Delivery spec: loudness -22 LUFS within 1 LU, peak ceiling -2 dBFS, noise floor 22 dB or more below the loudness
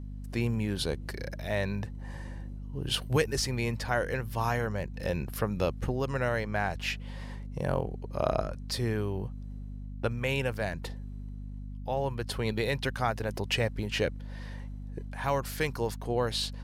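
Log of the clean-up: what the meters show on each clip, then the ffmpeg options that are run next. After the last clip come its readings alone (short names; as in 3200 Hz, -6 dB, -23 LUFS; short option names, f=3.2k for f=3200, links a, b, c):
hum 50 Hz; harmonics up to 250 Hz; hum level -37 dBFS; loudness -32.0 LUFS; peak -12.5 dBFS; loudness target -22.0 LUFS
-> -af "bandreject=f=50:t=h:w=4,bandreject=f=100:t=h:w=4,bandreject=f=150:t=h:w=4,bandreject=f=200:t=h:w=4,bandreject=f=250:t=h:w=4"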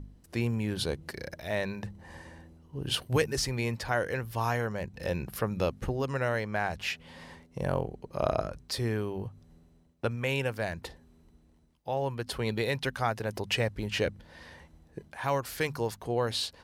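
hum none; loudness -32.0 LUFS; peak -13.0 dBFS; loudness target -22.0 LUFS
-> -af "volume=10dB"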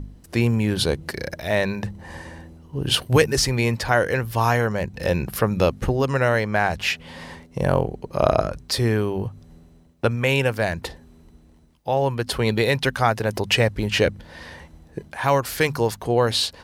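loudness -22.0 LUFS; peak -3.0 dBFS; noise floor -51 dBFS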